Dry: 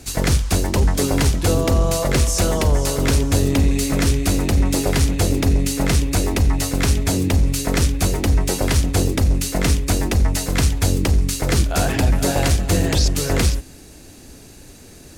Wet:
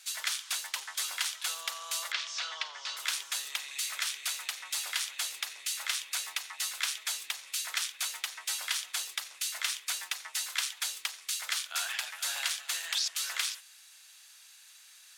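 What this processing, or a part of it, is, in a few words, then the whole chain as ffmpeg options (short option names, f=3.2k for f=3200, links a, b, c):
headphones lying on a table: -filter_complex "[0:a]highpass=f=1.2k:w=0.5412,highpass=f=1.2k:w=1.3066,equalizer=f=3.4k:t=o:w=0.49:g=6.5,asettb=1/sr,asplit=3[a][b][c];[a]atrim=end=2.124[d];[b]atrim=start=2.12:end=2.97,asetpts=PTS-STARTPTS,afade=t=in:d=0.004:c=qsin,afade=t=out:st=0.846:d=0.004:c=qsin,lowpass=f=5.1k:w=0.5412,lowpass=f=5.1k:w=1.3066[e];[c]atrim=start=2.966[f];[d][e]acrossfade=d=0.004:c1=hsin:c2=qsin[g];[g][f]acrossfade=d=0.004:c1=qsin:c2=hsin,volume=-8.5dB"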